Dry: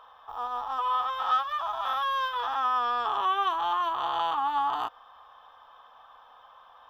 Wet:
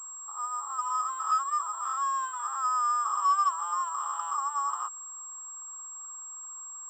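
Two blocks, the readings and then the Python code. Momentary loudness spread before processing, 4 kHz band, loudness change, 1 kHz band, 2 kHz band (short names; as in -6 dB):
7 LU, -13.5 dB, -2.5 dB, -1.5 dB, -9.0 dB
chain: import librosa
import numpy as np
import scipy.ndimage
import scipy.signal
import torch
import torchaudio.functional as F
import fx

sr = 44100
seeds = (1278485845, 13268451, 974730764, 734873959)

y = fx.ladder_highpass(x, sr, hz=1100.0, resonance_pct=80)
y = fx.high_shelf(y, sr, hz=3000.0, db=-10.5)
y = fx.pwm(y, sr, carrier_hz=7600.0)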